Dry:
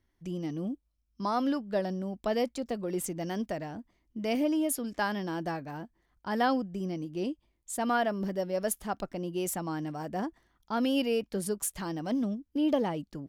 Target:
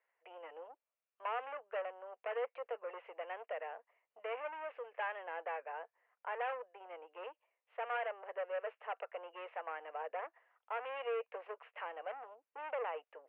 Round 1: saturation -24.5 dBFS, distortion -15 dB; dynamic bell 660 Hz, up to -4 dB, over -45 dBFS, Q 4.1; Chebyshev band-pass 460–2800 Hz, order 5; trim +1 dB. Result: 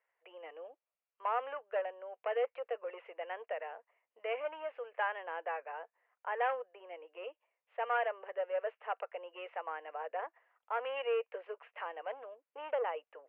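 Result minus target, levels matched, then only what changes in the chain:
saturation: distortion -8 dB
change: saturation -33 dBFS, distortion -8 dB

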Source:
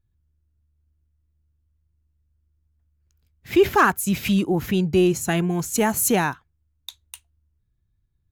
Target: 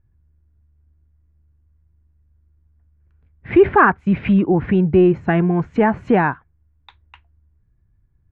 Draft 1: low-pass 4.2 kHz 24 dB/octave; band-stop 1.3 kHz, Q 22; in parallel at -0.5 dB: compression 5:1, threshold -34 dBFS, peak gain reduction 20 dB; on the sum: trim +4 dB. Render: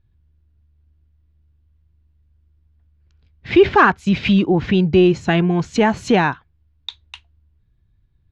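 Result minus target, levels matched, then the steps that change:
4 kHz band +14.5 dB
change: low-pass 2 kHz 24 dB/octave

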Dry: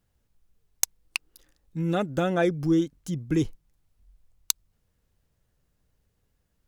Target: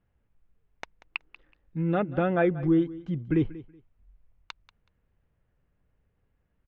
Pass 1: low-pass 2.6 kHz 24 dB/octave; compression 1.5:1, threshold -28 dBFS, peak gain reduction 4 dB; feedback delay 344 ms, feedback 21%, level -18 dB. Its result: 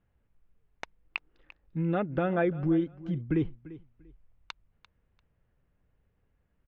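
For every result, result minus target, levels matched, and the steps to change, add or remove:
echo 157 ms late; compression: peak gain reduction +4 dB
change: feedback delay 187 ms, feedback 21%, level -18 dB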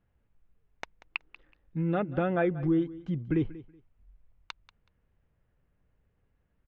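compression: peak gain reduction +4 dB
remove: compression 1.5:1, threshold -28 dBFS, peak gain reduction 4 dB

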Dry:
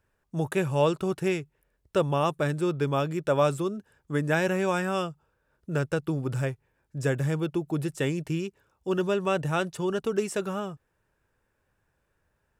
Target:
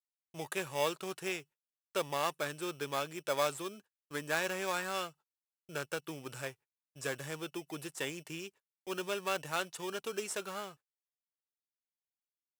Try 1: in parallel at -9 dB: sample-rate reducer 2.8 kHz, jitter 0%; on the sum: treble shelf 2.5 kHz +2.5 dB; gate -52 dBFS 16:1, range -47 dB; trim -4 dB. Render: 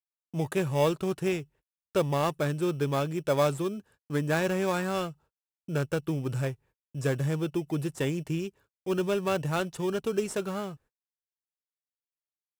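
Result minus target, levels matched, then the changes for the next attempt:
1 kHz band -3.5 dB
add after the parallel path: high-pass 1.3 kHz 6 dB/octave

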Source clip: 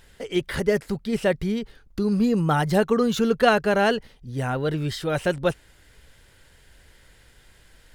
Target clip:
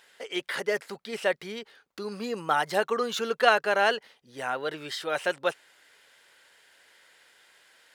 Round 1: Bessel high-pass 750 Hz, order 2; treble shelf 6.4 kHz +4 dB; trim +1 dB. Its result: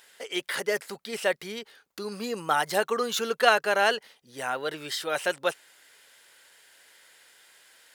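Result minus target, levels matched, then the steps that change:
8 kHz band +5.5 dB
change: treble shelf 6.4 kHz -6.5 dB

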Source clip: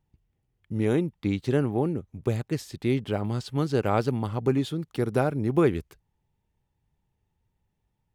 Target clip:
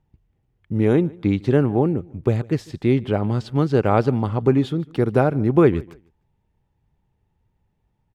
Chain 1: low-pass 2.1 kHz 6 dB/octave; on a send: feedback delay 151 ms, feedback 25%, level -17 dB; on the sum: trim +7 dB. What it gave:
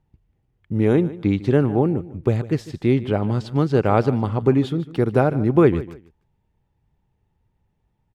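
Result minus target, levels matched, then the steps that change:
echo-to-direct +7 dB
change: feedback delay 151 ms, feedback 25%, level -24 dB

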